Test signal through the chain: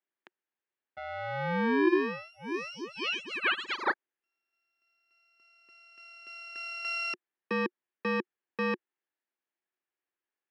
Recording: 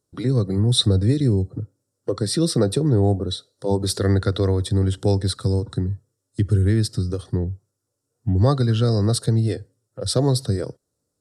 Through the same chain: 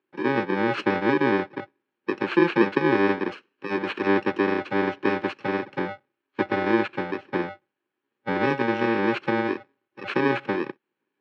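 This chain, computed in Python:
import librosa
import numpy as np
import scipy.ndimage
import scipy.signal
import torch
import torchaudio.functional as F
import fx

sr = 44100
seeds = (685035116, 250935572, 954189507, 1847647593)

y = fx.bit_reversed(x, sr, seeds[0], block=64)
y = fx.cabinet(y, sr, low_hz=210.0, low_slope=24, high_hz=3000.0, hz=(360.0, 860.0, 1700.0), db=(10, 3, 7))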